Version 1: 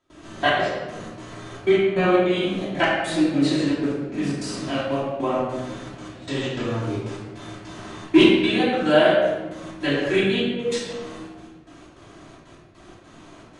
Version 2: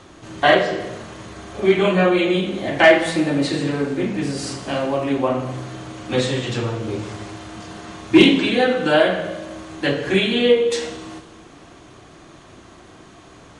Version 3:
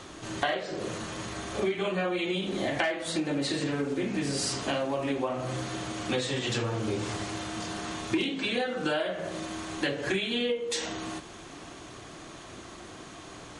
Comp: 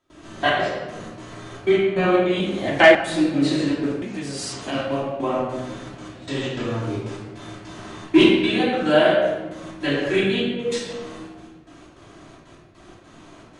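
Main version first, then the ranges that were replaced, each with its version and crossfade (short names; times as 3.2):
1
2.4–2.95 from 2
4.02–4.72 from 3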